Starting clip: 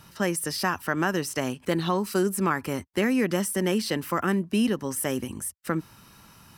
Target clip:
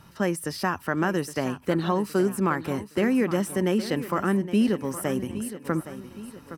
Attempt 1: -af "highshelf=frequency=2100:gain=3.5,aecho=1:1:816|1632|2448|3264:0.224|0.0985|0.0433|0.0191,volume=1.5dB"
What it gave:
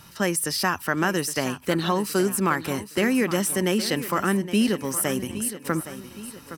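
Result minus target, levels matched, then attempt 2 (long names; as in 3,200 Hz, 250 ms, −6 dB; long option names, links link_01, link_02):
4,000 Hz band +6.5 dB
-af "highshelf=frequency=2100:gain=-8,aecho=1:1:816|1632|2448|3264:0.224|0.0985|0.0433|0.0191,volume=1.5dB"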